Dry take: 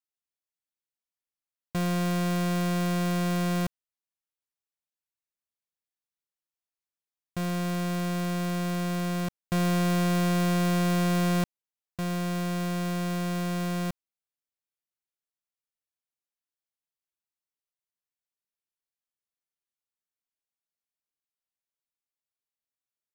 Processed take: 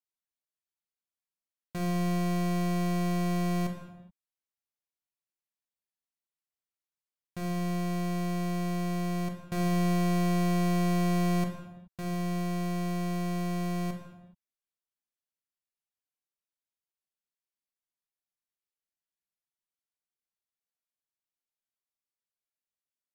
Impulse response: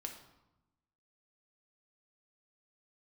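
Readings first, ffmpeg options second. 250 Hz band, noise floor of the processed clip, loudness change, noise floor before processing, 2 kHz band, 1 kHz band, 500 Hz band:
-2.0 dB, under -85 dBFS, -2.0 dB, under -85 dBFS, -5.0 dB, -2.0 dB, -2.5 dB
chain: -filter_complex "[1:a]atrim=start_sample=2205,afade=t=out:st=0.37:d=0.01,atrim=end_sample=16758,asetrate=32634,aresample=44100[a];[0:a][a]afir=irnorm=-1:irlink=0,volume=-4dB"

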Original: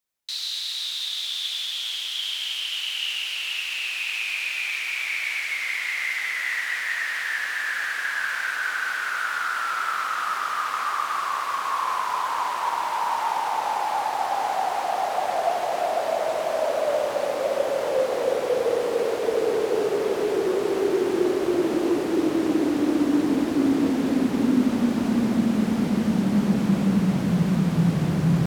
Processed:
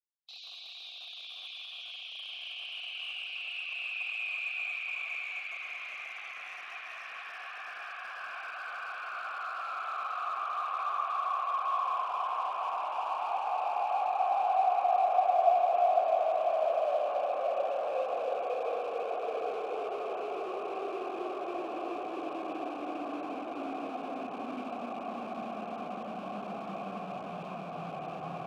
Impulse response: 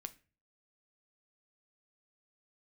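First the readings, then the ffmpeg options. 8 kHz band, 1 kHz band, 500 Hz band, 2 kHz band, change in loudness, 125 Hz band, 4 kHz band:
under -20 dB, -4.0 dB, -8.5 dB, -12.5 dB, -9.5 dB, under -25 dB, -14.0 dB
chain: -filter_complex "[0:a]afftfilt=real='re*gte(hypot(re,im),0.0158)':imag='im*gte(hypot(re,im),0.0158)':win_size=1024:overlap=0.75,asplit=2[a][b];[b]aeval=exprs='(mod(13.3*val(0)+1,2)-1)/13.3':c=same,volume=-8dB[c];[a][c]amix=inputs=2:normalize=0,asplit=3[d][e][f];[d]bandpass=f=730:t=q:w=8,volume=0dB[g];[e]bandpass=f=1.09k:t=q:w=8,volume=-6dB[h];[f]bandpass=f=2.44k:t=q:w=8,volume=-9dB[i];[g][h][i]amix=inputs=3:normalize=0,volume=1.5dB"

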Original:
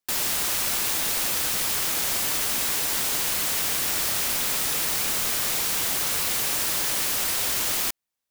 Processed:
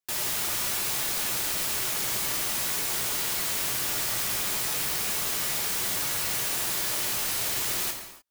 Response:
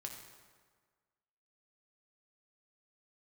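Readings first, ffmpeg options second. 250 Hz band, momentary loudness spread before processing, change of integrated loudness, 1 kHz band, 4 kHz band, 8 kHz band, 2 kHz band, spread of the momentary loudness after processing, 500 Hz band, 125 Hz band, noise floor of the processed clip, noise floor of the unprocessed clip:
-3.0 dB, 0 LU, -3.5 dB, -3.0 dB, -3.5 dB, -3.5 dB, -3.0 dB, 0 LU, -2.5 dB, -0.5 dB, -37 dBFS, -85 dBFS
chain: -filter_complex "[1:a]atrim=start_sample=2205,afade=t=out:st=0.36:d=0.01,atrim=end_sample=16317[a];[0:a][a]afir=irnorm=-1:irlink=0"

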